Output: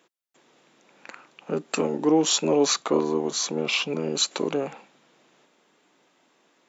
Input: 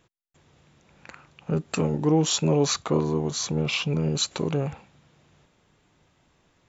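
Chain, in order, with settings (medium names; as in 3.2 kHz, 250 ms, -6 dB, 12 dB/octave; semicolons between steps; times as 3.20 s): high-pass 240 Hz 24 dB/octave; trim +2.5 dB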